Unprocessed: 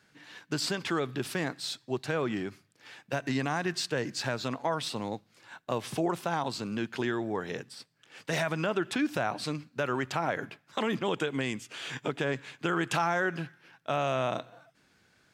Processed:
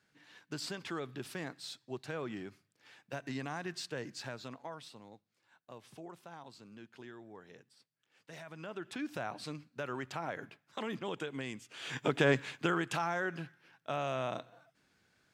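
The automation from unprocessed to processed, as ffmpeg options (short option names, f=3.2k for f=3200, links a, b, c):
-af "volume=14dB,afade=t=out:st=4.04:d=0.98:silence=0.316228,afade=t=in:st=8.44:d=0.75:silence=0.298538,afade=t=in:st=11.73:d=0.58:silence=0.223872,afade=t=out:st=12.31:d=0.55:silence=0.298538"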